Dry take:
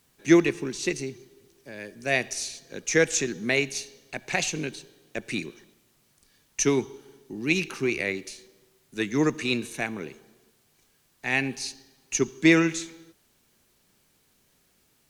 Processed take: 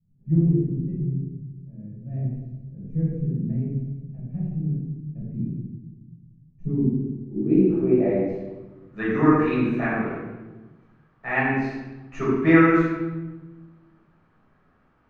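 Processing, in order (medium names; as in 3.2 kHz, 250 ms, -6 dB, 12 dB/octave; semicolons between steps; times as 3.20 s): low-pass sweep 150 Hz -> 1.3 kHz, 6.48–8.73 s; reverberation RT60 1.1 s, pre-delay 8 ms, DRR -9.5 dB; trim -8 dB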